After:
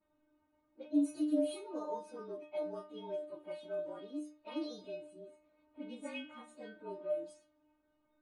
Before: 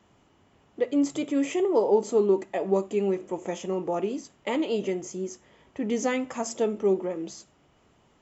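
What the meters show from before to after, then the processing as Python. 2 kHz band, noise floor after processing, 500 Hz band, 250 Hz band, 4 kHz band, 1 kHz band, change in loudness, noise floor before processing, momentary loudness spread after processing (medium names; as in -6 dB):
-15.0 dB, -77 dBFS, -15.5 dB, -10.0 dB, -11.0 dB, -15.5 dB, -12.5 dB, -63 dBFS, 18 LU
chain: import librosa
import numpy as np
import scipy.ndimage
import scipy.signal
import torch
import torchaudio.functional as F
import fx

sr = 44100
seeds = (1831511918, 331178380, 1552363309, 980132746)

y = fx.partial_stretch(x, sr, pct=110)
y = fx.stiff_resonator(y, sr, f0_hz=300.0, decay_s=0.39, stiffness=0.002)
y = fx.env_lowpass(y, sr, base_hz=1700.0, full_db=-40.0)
y = y * librosa.db_to_amplitude(6.5)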